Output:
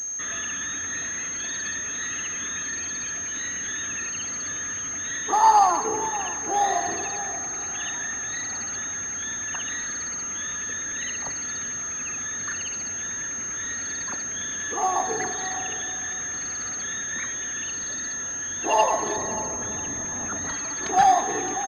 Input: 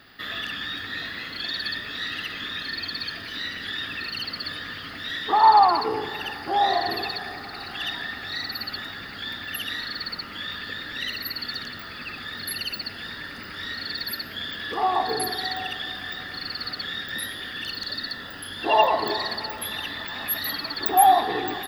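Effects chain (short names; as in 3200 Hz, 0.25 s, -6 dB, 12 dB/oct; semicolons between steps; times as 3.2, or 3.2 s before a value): 19.16–20.49 tilt shelf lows +8 dB; outdoor echo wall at 100 m, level -15 dB; pulse-width modulation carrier 6400 Hz; gain -1.5 dB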